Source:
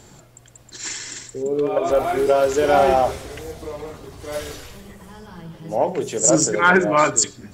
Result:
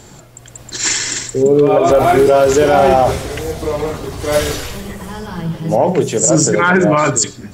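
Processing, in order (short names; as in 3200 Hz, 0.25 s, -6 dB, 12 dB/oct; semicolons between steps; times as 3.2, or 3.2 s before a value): dynamic EQ 140 Hz, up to +7 dB, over -40 dBFS, Q 1.1; AGC gain up to 6.5 dB; maximiser +8.5 dB; gain -1.5 dB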